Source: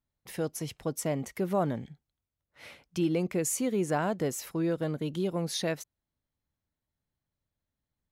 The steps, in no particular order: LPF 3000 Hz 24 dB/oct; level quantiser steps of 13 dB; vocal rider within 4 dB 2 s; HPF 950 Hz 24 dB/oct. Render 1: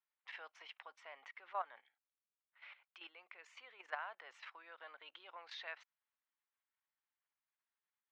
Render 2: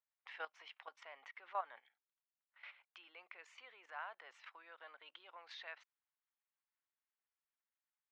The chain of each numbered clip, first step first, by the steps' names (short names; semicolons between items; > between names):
LPF > level quantiser > vocal rider > HPF; LPF > vocal rider > level quantiser > HPF